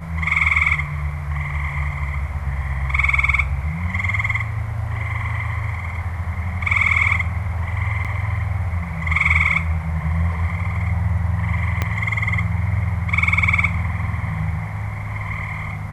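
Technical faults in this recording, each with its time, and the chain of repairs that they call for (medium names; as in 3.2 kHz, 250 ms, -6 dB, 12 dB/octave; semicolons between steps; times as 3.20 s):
8.04–8.05 s: dropout 7 ms
11.82 s: pop -7 dBFS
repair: de-click; interpolate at 8.04 s, 7 ms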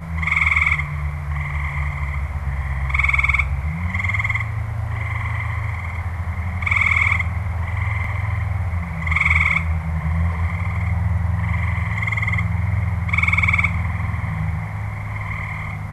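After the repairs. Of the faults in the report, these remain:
11.82 s: pop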